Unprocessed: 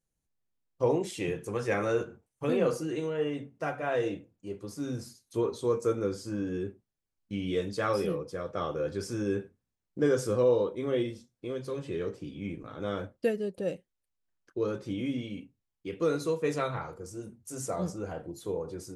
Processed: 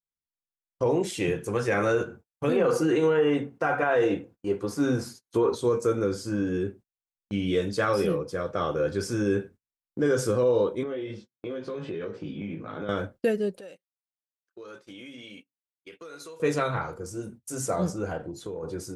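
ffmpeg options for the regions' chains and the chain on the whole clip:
-filter_complex "[0:a]asettb=1/sr,asplit=3[s0][s1][s2];[s0]atrim=end=2.564[s3];[s1]atrim=start=2.56:end=5.55,asetpts=PTS-STARTPTS,afade=t=in:d=0.004:c=qsin,afade=t=out:st=2.986:d=0.004:c=qsin,equalizer=f=830:w=0.38:g=9,bandreject=f=610:w=7.6[s4];[s2]atrim=start=5.546[s5];[s3][s4]acrossfade=d=0.004:c1=hsin:c2=qsin[s6];[s6][s5]acrossfade=d=0.004:c1=qsin:c2=hsin,asettb=1/sr,asplit=3[s7][s8][s9];[s7]atrim=end=10.834[s10];[s8]atrim=start=10.83:end=12.89,asetpts=PTS-STARTPTS,afade=t=in:d=0.004:c=qsin,afade=t=out:st=2.056:d=0.004:c=qsin,highpass=130,lowpass=3700,asplit=2[s11][s12];[s12]adelay=19,volume=0.75[s13];[s11][s13]amix=inputs=2:normalize=0,atrim=end_sample=90846,acompressor=threshold=0.0178:ratio=8:attack=3.2:release=140:knee=1:detection=peak[s14];[s9]atrim=start=12.886[s15];[s10][s14]acrossfade=d=0.004:c1=hsin:c2=qsin[s16];[s16][s15]acrossfade=d=0.004:c1=qsin:c2=hsin,asettb=1/sr,asplit=3[s17][s18][s19];[s17]atrim=end=13.574[s20];[s18]atrim=start=13.57:end=16.4,asetpts=PTS-STARTPTS,afade=t=in:d=0.004:c=qsin,afade=t=out:st=2.826:d=0.004:c=qsin,highpass=f=1100:p=1,acompressor=threshold=0.00562:ratio=8:attack=3.2:release=140:knee=1:detection=peak[s21];[s19]atrim=start=16.396[s22];[s20][s21]acrossfade=d=0.004:c1=hsin:c2=qsin[s23];[s23][s22]acrossfade=d=0.004:c1=qsin:c2=hsin,asettb=1/sr,asplit=3[s24][s25][s26];[s24]atrim=end=18.174[s27];[s25]atrim=start=18.17:end=18.63,asetpts=PTS-STARTPTS,afade=t=in:d=0.004:c=qsin,afade=t=out:st=0.456:d=0.004:c=qsin,lowpass=8000,acompressor=threshold=0.0158:ratio=10:attack=3.2:release=140:knee=1:detection=peak[s28];[s26]atrim=start=18.626[s29];[s27][s28]acrossfade=d=0.004:c1=hsin:c2=qsin[s30];[s30][s29]acrossfade=d=0.004:c1=qsin:c2=hsin,agate=range=0.0501:threshold=0.00282:ratio=16:detection=peak,equalizer=f=1500:t=o:w=0.21:g=4.5,alimiter=limit=0.0944:level=0:latency=1:release=50,volume=1.88"

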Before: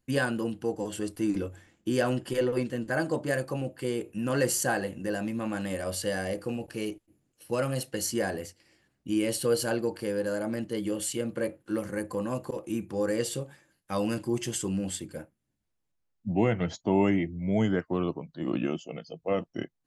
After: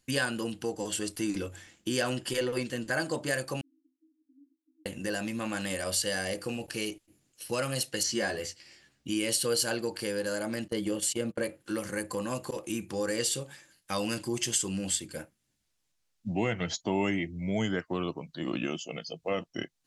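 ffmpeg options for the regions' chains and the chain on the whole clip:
-filter_complex "[0:a]asettb=1/sr,asplit=3[s0][s1][s2];[s0]atrim=end=3.614[s3];[s1]atrim=start=3.61:end=4.86,asetpts=PTS-STARTPTS,afade=t=in:d=0.004:c=qsin,afade=t=out:st=1.246:d=0.004:c=qsin,aeval=exprs='val(0)+0.5*0.0282*sgn(val(0))':c=same,asuperpass=centerf=290:order=20:qfactor=4.2,aderivative[s4];[s2]atrim=start=4.856[s5];[s3][s4]acrossfade=d=0.004:c1=hsin:c2=qsin[s6];[s6][s5]acrossfade=d=0.004:c1=qsin:c2=hsin,asettb=1/sr,asplit=3[s7][s8][s9];[s7]atrim=end=8.034[s10];[s8]atrim=start=8.03:end=9.1,asetpts=PTS-STARTPTS,afade=t=in:d=0.004:c=qsin,afade=t=out:st=1.066:d=0.004:c=qsin,acrossover=split=6000[s11][s12];[s12]acompressor=threshold=0.00398:ratio=4:attack=1:release=60[s13];[s11][s13]amix=inputs=2:normalize=0,equalizer=f=11000:w=1.1:g=-6,asplit=2[s14][s15];[s15]adelay=14,volume=0.562[s16];[s14][s16]amix=inputs=2:normalize=0,atrim=end_sample=47187[s17];[s9]atrim=start=9.096[s18];[s10][s17]acrossfade=d=0.004:c1=hsin:c2=qsin[s19];[s19][s18]acrossfade=d=0.004:c1=qsin:c2=hsin,asettb=1/sr,asplit=3[s20][s21][s22];[s20]atrim=end=10.684[s23];[s21]atrim=start=10.68:end=11.43,asetpts=PTS-STARTPTS,afade=t=in:d=0.004:c=qsin,afade=t=out:st=0.746:d=0.004:c=qsin,agate=range=0.0708:threshold=0.0158:ratio=16:release=100:detection=peak,tiltshelf=f=1400:g=3.5[s24];[s22]atrim=start=11.426[s25];[s23][s24]acrossfade=d=0.004:c1=hsin:c2=qsin[s26];[s26][s25]acrossfade=d=0.004:c1=qsin:c2=hsin,equalizer=f=5600:w=0.31:g=12.5,acompressor=threshold=0.0178:ratio=1.5"

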